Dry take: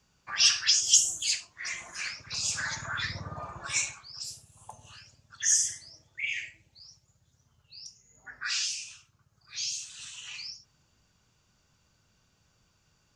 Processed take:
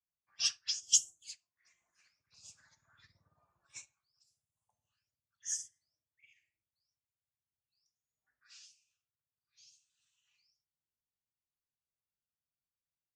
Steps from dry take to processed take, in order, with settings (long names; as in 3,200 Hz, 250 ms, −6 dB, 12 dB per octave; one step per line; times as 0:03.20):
dynamic equaliser 2,000 Hz, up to −4 dB, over −39 dBFS, Q 0.74
expander for the loud parts 2.5 to 1, over −39 dBFS
level −3.5 dB